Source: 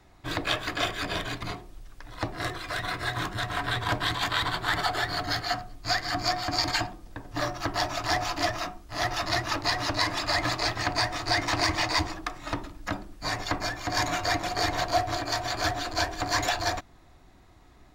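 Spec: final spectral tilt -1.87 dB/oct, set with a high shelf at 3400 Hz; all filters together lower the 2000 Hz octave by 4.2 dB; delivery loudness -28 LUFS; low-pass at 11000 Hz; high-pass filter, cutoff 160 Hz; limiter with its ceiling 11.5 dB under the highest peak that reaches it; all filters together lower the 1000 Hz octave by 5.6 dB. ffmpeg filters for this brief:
-af "highpass=160,lowpass=11k,equalizer=f=1k:t=o:g=-8,equalizer=f=2k:t=o:g=-4.5,highshelf=f=3.4k:g=7,volume=3dB,alimiter=limit=-15.5dB:level=0:latency=1"

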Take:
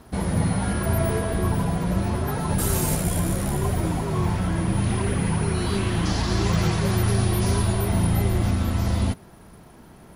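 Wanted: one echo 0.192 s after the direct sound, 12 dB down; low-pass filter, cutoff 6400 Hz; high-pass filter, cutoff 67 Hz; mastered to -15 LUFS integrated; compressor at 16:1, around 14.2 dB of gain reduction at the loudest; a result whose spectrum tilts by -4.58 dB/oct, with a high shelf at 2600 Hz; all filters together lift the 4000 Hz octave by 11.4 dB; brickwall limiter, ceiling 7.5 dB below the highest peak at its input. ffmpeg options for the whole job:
-af "highpass=67,lowpass=6.4k,highshelf=f=2.6k:g=8.5,equalizer=f=4k:t=o:g=7.5,acompressor=threshold=-31dB:ratio=16,alimiter=level_in=3.5dB:limit=-24dB:level=0:latency=1,volume=-3.5dB,aecho=1:1:192:0.251,volume=22dB"

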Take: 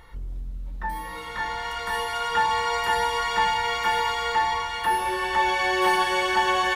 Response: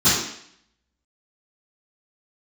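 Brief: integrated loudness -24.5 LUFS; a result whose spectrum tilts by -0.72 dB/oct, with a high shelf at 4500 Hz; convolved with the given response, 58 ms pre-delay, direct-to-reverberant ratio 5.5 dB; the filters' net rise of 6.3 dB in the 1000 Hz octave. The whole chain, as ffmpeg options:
-filter_complex "[0:a]equalizer=f=1k:t=o:g=7.5,highshelf=f=4.5k:g=-5,asplit=2[a][b];[1:a]atrim=start_sample=2205,adelay=58[c];[b][c]afir=irnorm=-1:irlink=0,volume=-25dB[d];[a][d]amix=inputs=2:normalize=0,volume=-5dB"

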